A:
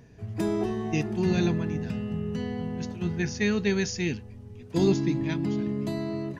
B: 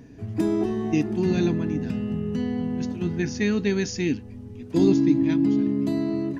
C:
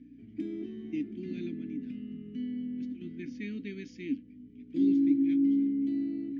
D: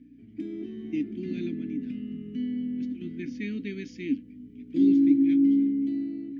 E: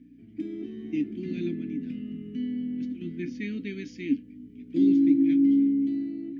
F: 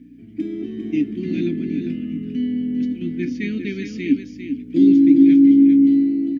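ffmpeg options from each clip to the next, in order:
-filter_complex "[0:a]equalizer=f=280:t=o:w=0.45:g=14,asplit=2[s0][s1];[s1]acompressor=threshold=0.0355:ratio=6,volume=0.891[s2];[s0][s2]amix=inputs=2:normalize=0,volume=0.708"
-filter_complex "[0:a]aeval=exprs='val(0)+0.0178*(sin(2*PI*60*n/s)+sin(2*PI*2*60*n/s)/2+sin(2*PI*3*60*n/s)/3+sin(2*PI*4*60*n/s)/4+sin(2*PI*5*60*n/s)/5)':c=same,asplit=3[s0][s1][s2];[s0]bandpass=f=270:t=q:w=8,volume=1[s3];[s1]bandpass=f=2290:t=q:w=8,volume=0.501[s4];[s2]bandpass=f=3010:t=q:w=8,volume=0.355[s5];[s3][s4][s5]amix=inputs=3:normalize=0,volume=0.75"
-af "dynaudnorm=f=160:g=9:m=1.78"
-af "flanger=delay=5.7:depth=1.3:regen=77:speed=0.61:shape=sinusoidal,volume=1.78"
-af "aecho=1:1:400:0.398,volume=2.51"

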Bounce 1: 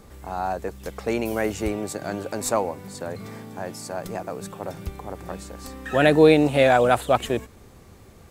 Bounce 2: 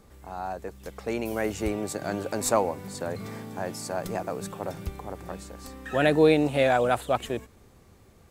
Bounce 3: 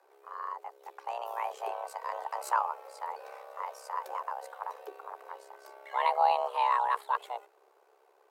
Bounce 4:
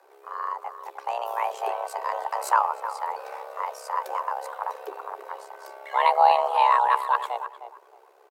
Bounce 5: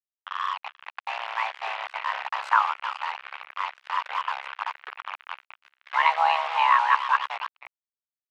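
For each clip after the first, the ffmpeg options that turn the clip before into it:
-af "dynaudnorm=f=350:g=9:m=3.76,volume=0.447"
-af "afreqshift=350,tremolo=f=68:d=0.667,equalizer=f=250:t=o:w=1:g=-6,equalizer=f=1000:t=o:w=1:g=8,equalizer=f=8000:t=o:w=1:g=-5,volume=0.376"
-filter_complex "[0:a]asplit=2[s0][s1];[s1]adelay=309,lowpass=f=1800:p=1,volume=0.299,asplit=2[s2][s3];[s3]adelay=309,lowpass=f=1800:p=1,volume=0.22,asplit=2[s4][s5];[s5]adelay=309,lowpass=f=1800:p=1,volume=0.22[s6];[s0][s2][s4][s6]amix=inputs=4:normalize=0,volume=2.37"
-af "acrusher=bits=4:mix=0:aa=0.5,asuperpass=centerf=1900:order=4:qfactor=1,volume=2"

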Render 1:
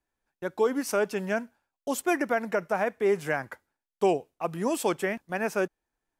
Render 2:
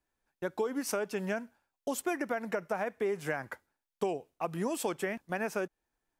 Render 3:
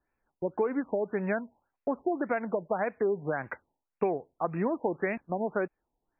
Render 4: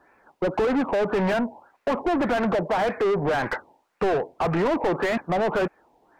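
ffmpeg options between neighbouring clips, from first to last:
-af "acompressor=threshold=0.0355:ratio=6"
-af "afftfilt=real='re*lt(b*sr/1024,970*pow(2800/970,0.5+0.5*sin(2*PI*1.8*pts/sr)))':imag='im*lt(b*sr/1024,970*pow(2800/970,0.5+0.5*sin(2*PI*1.8*pts/sr)))':win_size=1024:overlap=0.75,volume=1.58"
-filter_complex "[0:a]asplit=2[s0][s1];[s1]highpass=f=720:p=1,volume=63.1,asoftclip=type=tanh:threshold=0.188[s2];[s0][s2]amix=inputs=2:normalize=0,lowpass=f=1200:p=1,volume=0.501"

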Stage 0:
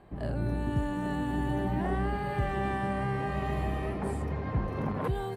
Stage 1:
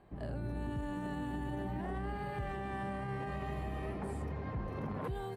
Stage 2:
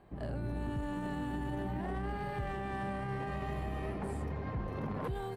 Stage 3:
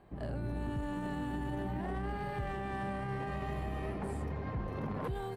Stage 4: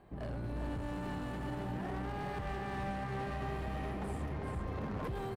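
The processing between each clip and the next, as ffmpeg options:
-af "alimiter=level_in=1.06:limit=0.0631:level=0:latency=1:release=34,volume=0.944,volume=0.501"
-af "aeval=exprs='0.0316*(cos(1*acos(clip(val(0)/0.0316,-1,1)))-cos(1*PI/2))+0.00112*(cos(6*acos(clip(val(0)/0.0316,-1,1)))-cos(6*PI/2))':c=same,volume=1.19"
-af anull
-af "volume=59.6,asoftclip=hard,volume=0.0168,aecho=1:1:397:0.501"

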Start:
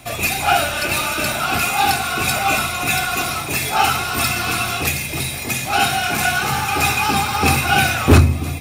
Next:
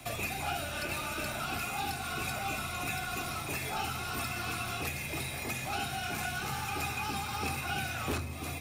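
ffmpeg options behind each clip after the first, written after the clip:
-filter_complex "[0:a]acrossover=split=97|390|2300[s0][s1][s2][s3];[s0]acompressor=threshold=0.01:ratio=4[s4];[s1]acompressor=threshold=0.0141:ratio=4[s5];[s2]acompressor=threshold=0.0251:ratio=4[s6];[s3]acompressor=threshold=0.0178:ratio=4[s7];[s4][s5][s6][s7]amix=inputs=4:normalize=0,volume=0.473"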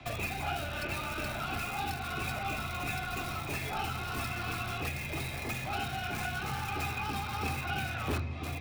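-filter_complex "[0:a]acrossover=split=180|4600[s0][s1][s2];[s0]lowshelf=f=130:g=5[s3];[s2]acrusher=bits=4:dc=4:mix=0:aa=0.000001[s4];[s3][s1][s4]amix=inputs=3:normalize=0"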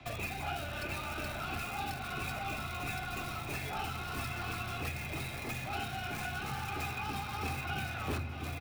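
-af "aecho=1:1:622|1244|1866|2488|3110|3732:0.224|0.121|0.0653|0.0353|0.019|0.0103,volume=0.708"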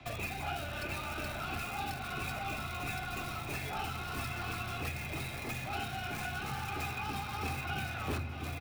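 -af anull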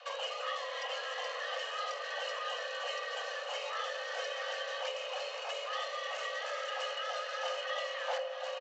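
-af "afreqshift=440,aresample=16000,aresample=44100"

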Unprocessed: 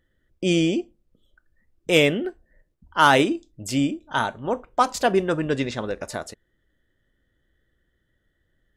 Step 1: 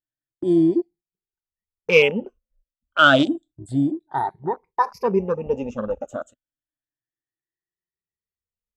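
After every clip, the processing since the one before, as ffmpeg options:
-af "afftfilt=real='re*pow(10,23/40*sin(2*PI*(0.83*log(max(b,1)*sr/1024/100)/log(2)-(0.3)*(pts-256)/sr)))':imag='im*pow(10,23/40*sin(2*PI*(0.83*log(max(b,1)*sr/1024/100)/log(2)-(0.3)*(pts-256)/sr)))':win_size=1024:overlap=0.75,afwtdn=0.0794,agate=range=0.224:threshold=0.01:ratio=16:detection=peak,volume=0.562"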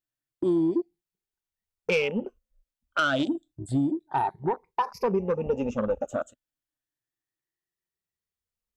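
-af "acompressor=threshold=0.0891:ratio=10,asoftclip=type=tanh:threshold=0.141,volume=1.19"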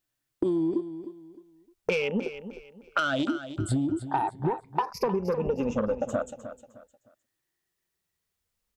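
-filter_complex "[0:a]acompressor=threshold=0.0224:ratio=10,asplit=2[s0][s1];[s1]aecho=0:1:307|614|921:0.251|0.0754|0.0226[s2];[s0][s2]amix=inputs=2:normalize=0,volume=2.82"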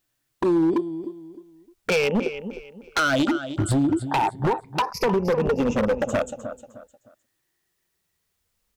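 -af "aeval=exprs='0.075*(abs(mod(val(0)/0.075+3,4)-2)-1)':c=same,volume=2.24"

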